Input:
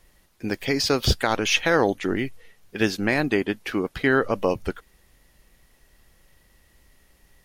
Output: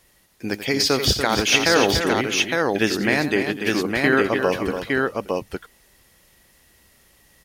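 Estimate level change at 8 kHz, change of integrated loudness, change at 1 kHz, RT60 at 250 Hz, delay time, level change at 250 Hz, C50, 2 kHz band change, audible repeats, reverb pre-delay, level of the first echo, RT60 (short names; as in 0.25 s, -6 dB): +7.0 dB, +3.5 dB, +3.5 dB, none, 87 ms, +3.0 dB, none, +4.5 dB, 4, none, -12.5 dB, none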